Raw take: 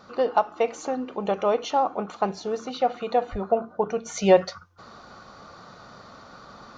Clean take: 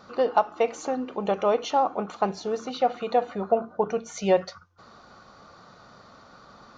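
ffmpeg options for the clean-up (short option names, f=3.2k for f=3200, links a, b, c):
-filter_complex "[0:a]asplit=3[a][b][c];[a]afade=t=out:st=3.31:d=0.02[d];[b]highpass=f=140:w=0.5412,highpass=f=140:w=1.3066,afade=t=in:st=3.31:d=0.02,afade=t=out:st=3.43:d=0.02[e];[c]afade=t=in:st=3.43:d=0.02[f];[d][e][f]amix=inputs=3:normalize=0,asetnsamples=n=441:p=0,asendcmd='4.05 volume volume -4.5dB',volume=0dB"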